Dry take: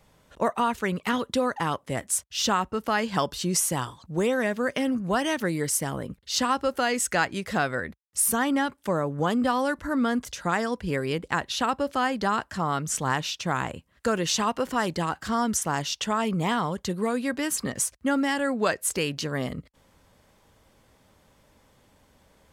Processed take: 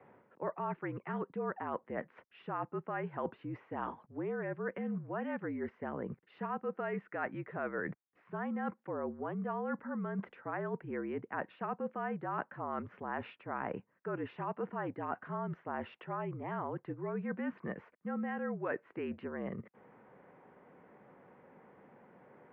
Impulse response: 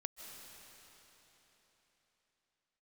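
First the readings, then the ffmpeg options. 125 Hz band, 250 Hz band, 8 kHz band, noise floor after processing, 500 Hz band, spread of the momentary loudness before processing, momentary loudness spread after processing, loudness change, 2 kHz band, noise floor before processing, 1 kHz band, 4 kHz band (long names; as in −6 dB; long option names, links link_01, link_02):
−11.5 dB, −12.0 dB, below −40 dB, −74 dBFS, −10.5 dB, 5 LU, 5 LU, −13.0 dB, −14.0 dB, −63 dBFS, −12.5 dB, below −30 dB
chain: -af "tiltshelf=frequency=1400:gain=3.5,areverse,acompressor=threshold=-35dB:ratio=16,areverse,highpass=frequency=230:width_type=q:width=0.5412,highpass=frequency=230:width_type=q:width=1.307,lowpass=frequency=2300:width_type=q:width=0.5176,lowpass=frequency=2300:width_type=q:width=0.7071,lowpass=frequency=2300:width_type=q:width=1.932,afreqshift=-53,volume=2dB"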